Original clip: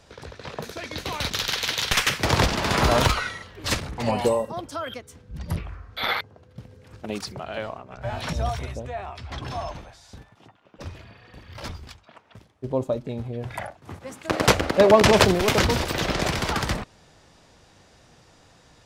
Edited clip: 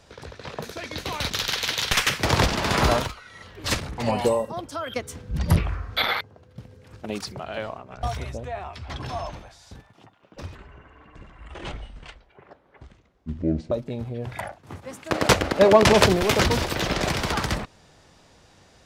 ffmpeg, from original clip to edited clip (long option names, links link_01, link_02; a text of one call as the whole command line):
ffmpeg -i in.wav -filter_complex "[0:a]asplit=8[link_01][link_02][link_03][link_04][link_05][link_06][link_07][link_08];[link_01]atrim=end=3.17,asetpts=PTS-STARTPTS,afade=type=out:start_time=2.92:duration=0.25:curve=qua:silence=0.125893[link_09];[link_02]atrim=start=3.17:end=3.22,asetpts=PTS-STARTPTS,volume=-18dB[link_10];[link_03]atrim=start=3.22:end=4.962,asetpts=PTS-STARTPTS,afade=type=in:duration=0.25:curve=qua:silence=0.125893[link_11];[link_04]atrim=start=4.958:end=6.022,asetpts=PTS-STARTPTS,volume=9dB[link_12];[link_05]atrim=start=6.018:end=8.032[link_13];[link_06]atrim=start=8.448:end=10.974[link_14];[link_07]atrim=start=10.97:end=12.9,asetpts=PTS-STARTPTS,asetrate=26901,aresample=44100[link_15];[link_08]atrim=start=12.896[link_16];[link_09][link_10][link_11]concat=n=3:v=0:a=1[link_17];[link_17][link_12]acrossfade=duration=0.004:curve1=hsin:curve2=hsin[link_18];[link_18][link_13]acrossfade=duration=0.004:curve1=hsin:curve2=hsin[link_19];[link_19][link_14]acrossfade=duration=0.004:curve1=hsin:curve2=hsin[link_20];[link_20][link_15]acrossfade=duration=0.004:curve1=hsin:curve2=hsin[link_21];[link_21][link_16]acrossfade=duration=0.004:curve1=hsin:curve2=hsin" out.wav